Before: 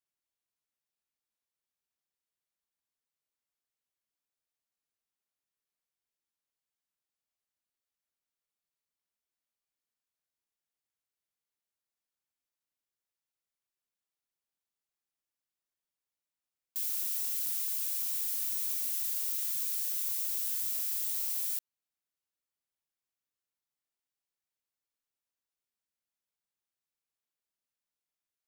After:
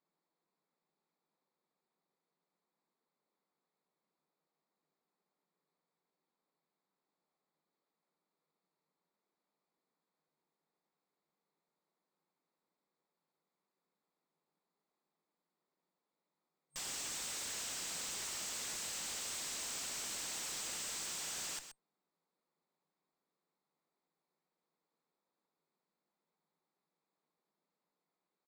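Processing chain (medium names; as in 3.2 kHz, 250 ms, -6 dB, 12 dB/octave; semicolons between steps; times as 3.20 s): local Wiener filter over 15 samples; fifteen-band graphic EQ 250 Hz -5 dB, 630 Hz -5 dB, 1.6 kHz -11 dB, 6.3 kHz -8 dB; Chebyshev shaper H 7 -9 dB, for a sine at -20 dBFS; FFT band-pass 150–8500 Hz; valve stage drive 56 dB, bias 0.4; delay 126 ms -10.5 dB; trim +15.5 dB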